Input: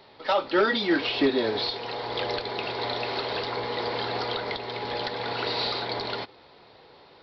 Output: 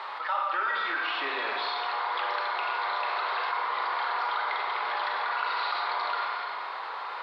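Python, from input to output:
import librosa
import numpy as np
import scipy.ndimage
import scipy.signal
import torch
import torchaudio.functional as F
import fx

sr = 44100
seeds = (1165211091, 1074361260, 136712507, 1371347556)

p1 = fx.rattle_buzz(x, sr, strikes_db=-34.0, level_db=-25.0)
p2 = fx.rider(p1, sr, range_db=10, speed_s=0.5)
p3 = p1 + (p2 * 10.0 ** (1.0 / 20.0))
p4 = fx.quant_dither(p3, sr, seeds[0], bits=10, dither='none')
p5 = fx.ladder_bandpass(p4, sr, hz=1300.0, resonance_pct=55)
p6 = fx.rev_schroeder(p5, sr, rt60_s=1.1, comb_ms=32, drr_db=2.0)
p7 = fx.env_flatten(p6, sr, amount_pct=70)
y = p7 * 10.0 ** (-2.5 / 20.0)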